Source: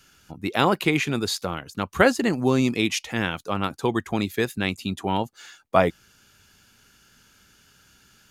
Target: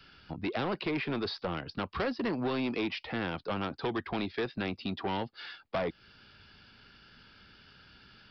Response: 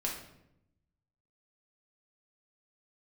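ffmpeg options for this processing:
-filter_complex "[0:a]acrossover=split=310|640|1400[s0][s1][s2][s3];[s0]acompressor=threshold=0.0158:ratio=4[s4];[s1]acompressor=threshold=0.0316:ratio=4[s5];[s2]acompressor=threshold=0.0126:ratio=4[s6];[s3]acompressor=threshold=0.0126:ratio=4[s7];[s4][s5][s6][s7]amix=inputs=4:normalize=0,aresample=11025,asoftclip=type=tanh:threshold=0.0376,aresample=44100,volume=1.19"

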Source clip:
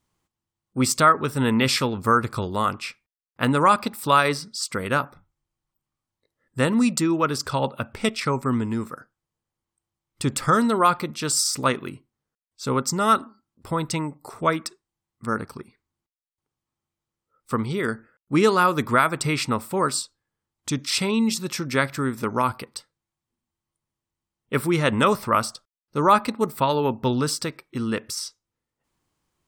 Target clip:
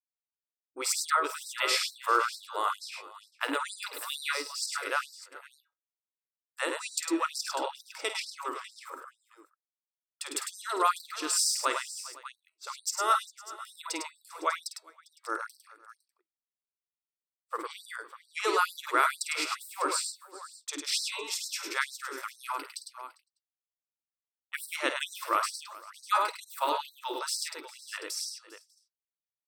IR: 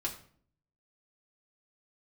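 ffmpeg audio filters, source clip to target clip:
-af "bandreject=f=321.3:t=h:w=4,bandreject=f=642.6:t=h:w=4,bandreject=f=963.9:t=h:w=4,bandreject=f=1285.2:t=h:w=4,bandreject=f=1606.5:t=h:w=4,bandreject=f=1927.8:t=h:w=4,bandreject=f=2249.1:t=h:w=4,bandreject=f=2570.4:t=h:w=4,bandreject=f=2891.7:t=h:w=4,bandreject=f=3213:t=h:w=4,bandreject=f=3534.3:t=h:w=4,bandreject=f=3855.6:t=h:w=4,bandreject=f=4176.9:t=h:w=4,bandreject=f=4498.2:t=h:w=4,asubboost=boost=11.5:cutoff=130,aecho=1:1:51|103|105|400|508|597:0.335|0.531|0.15|0.1|0.1|0.2,agate=range=0.0224:threshold=0.0282:ratio=3:detection=peak,afftfilt=real='re*gte(b*sr/1024,280*pow(3900/280,0.5+0.5*sin(2*PI*2.2*pts/sr)))':imag='im*gte(b*sr/1024,280*pow(3900/280,0.5+0.5*sin(2*PI*2.2*pts/sr)))':win_size=1024:overlap=0.75,volume=0.531"

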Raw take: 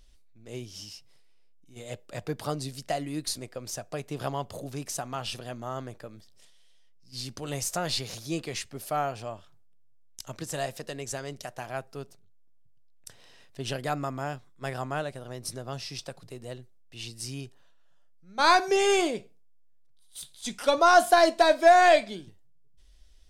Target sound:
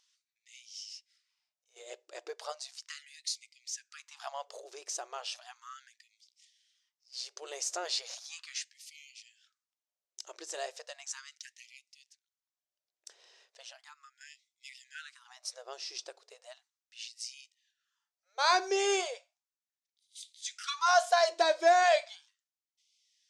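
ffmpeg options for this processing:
-filter_complex "[0:a]asettb=1/sr,asplit=3[s0][s1][s2];[s0]atrim=end=13.644[s3];[s1]atrim=start=13.64:end=14.21,asetpts=PTS-STARTPTS,afade=t=in:d=0.004:c=qsin,afade=t=out:st=0.566:d=0.004:c=qsin,acrossover=split=310[s4][s5];[s5]acompressor=threshold=0.00282:ratio=2[s6];[s4][s6]amix=inputs=2:normalize=0[s7];[s2]atrim=start=14.206[s8];[s3][s7]acrossfade=d=0.004:c1=hsin:c2=qsin[s9];[s9][s8]acrossfade=d=0.004:c1=qsin:c2=hsin,lowpass=f=6400:t=q:w=2,afftfilt=real='re*gte(b*sr/1024,310*pow(2000/310,0.5+0.5*sin(2*PI*0.36*pts/sr)))':imag='im*gte(b*sr/1024,310*pow(2000/310,0.5+0.5*sin(2*PI*0.36*pts/sr)))':win_size=1024:overlap=0.75,volume=0.473"

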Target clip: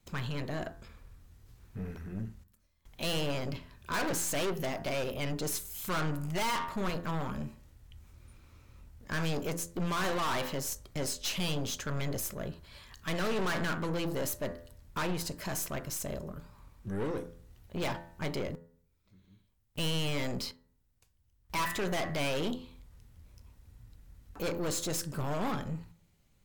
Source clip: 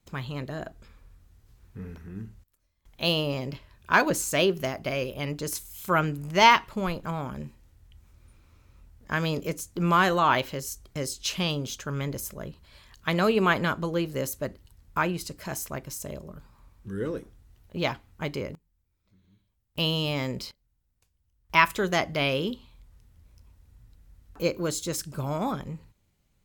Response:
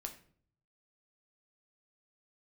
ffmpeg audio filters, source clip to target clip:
-filter_complex "[0:a]bandreject=f=84.84:t=h:w=4,bandreject=f=169.68:t=h:w=4,bandreject=f=254.52:t=h:w=4,bandreject=f=339.36:t=h:w=4,bandreject=f=424.2:t=h:w=4,bandreject=f=509.04:t=h:w=4,bandreject=f=593.88:t=h:w=4,bandreject=f=678.72:t=h:w=4,bandreject=f=763.56:t=h:w=4,bandreject=f=848.4:t=h:w=4,bandreject=f=933.24:t=h:w=4,bandreject=f=1018.08:t=h:w=4,bandreject=f=1102.92:t=h:w=4,bandreject=f=1187.76:t=h:w=4,bandreject=f=1272.6:t=h:w=4,bandreject=f=1357.44:t=h:w=4,bandreject=f=1442.28:t=h:w=4,bandreject=f=1527.12:t=h:w=4,bandreject=f=1611.96:t=h:w=4,bandreject=f=1696.8:t=h:w=4,bandreject=f=1781.64:t=h:w=4,bandreject=f=1866.48:t=h:w=4,bandreject=f=1951.32:t=h:w=4,aeval=exprs='(tanh(44.7*val(0)+0.35)-tanh(0.35))/44.7':c=same,asplit=2[s0][s1];[1:a]atrim=start_sample=2205,asetrate=70560,aresample=44100[s2];[s1][s2]afir=irnorm=-1:irlink=0,volume=0.596[s3];[s0][s3]amix=inputs=2:normalize=0,volume=1.12"

